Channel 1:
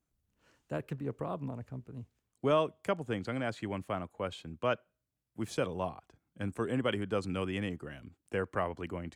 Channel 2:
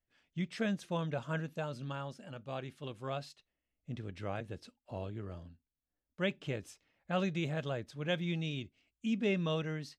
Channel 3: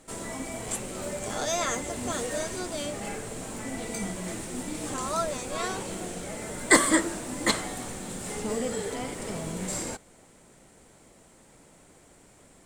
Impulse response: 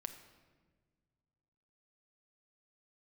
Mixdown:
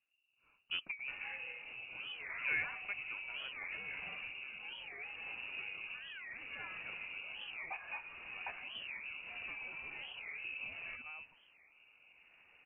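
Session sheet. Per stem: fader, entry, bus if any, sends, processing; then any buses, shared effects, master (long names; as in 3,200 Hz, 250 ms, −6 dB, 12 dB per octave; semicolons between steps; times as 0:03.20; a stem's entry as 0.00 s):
0:00.64 −0.5 dB → 0:01.17 −9 dB → 0:03.67 −9 dB → 0:03.95 −19.5 dB, 0.00 s, no bus, no send, no processing
−1.5 dB, 1.40 s, bus A, no send, downward compressor, threshold −40 dBFS, peak gain reduction 11.5 dB
−7.0 dB, 1.00 s, bus A, no send, notch filter 830 Hz, Q 14
bus A: 0.0 dB, downward compressor 3 to 1, threshold −42 dBFS, peak gain reduction 16.5 dB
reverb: not used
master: rotating-speaker cabinet horn 0.7 Hz; voice inversion scrambler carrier 2,800 Hz; wow of a warped record 45 rpm, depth 250 cents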